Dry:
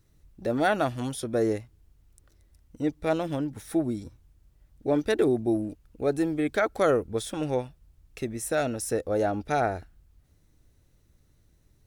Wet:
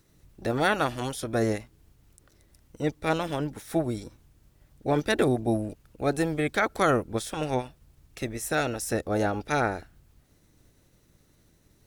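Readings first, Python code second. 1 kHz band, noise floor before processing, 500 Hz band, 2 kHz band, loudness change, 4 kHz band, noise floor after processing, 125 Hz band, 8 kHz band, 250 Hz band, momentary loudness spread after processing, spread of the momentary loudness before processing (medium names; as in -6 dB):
+2.0 dB, -64 dBFS, -1.5 dB, +4.0 dB, 0.0 dB, +4.0 dB, -63 dBFS, +3.0 dB, +1.0 dB, -1.0 dB, 11 LU, 11 LU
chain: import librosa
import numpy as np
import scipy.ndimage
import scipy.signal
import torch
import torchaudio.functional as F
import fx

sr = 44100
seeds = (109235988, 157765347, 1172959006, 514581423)

y = fx.spec_clip(x, sr, under_db=12)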